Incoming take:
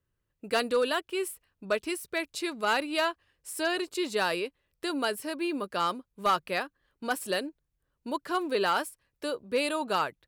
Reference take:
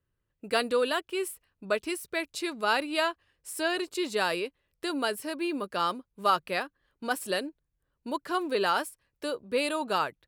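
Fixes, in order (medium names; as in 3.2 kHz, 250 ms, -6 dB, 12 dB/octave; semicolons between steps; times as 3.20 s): clip repair -18.5 dBFS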